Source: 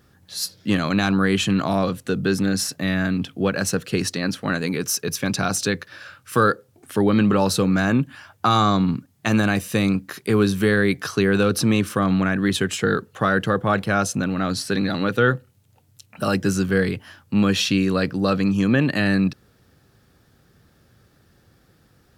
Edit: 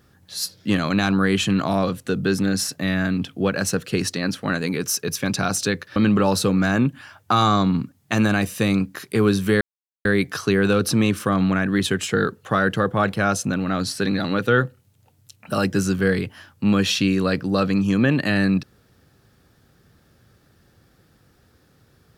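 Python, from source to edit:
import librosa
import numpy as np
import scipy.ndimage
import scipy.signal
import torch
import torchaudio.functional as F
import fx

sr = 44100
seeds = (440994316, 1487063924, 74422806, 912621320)

y = fx.edit(x, sr, fx.cut(start_s=5.96, length_s=1.14),
    fx.insert_silence(at_s=10.75, length_s=0.44), tone=tone)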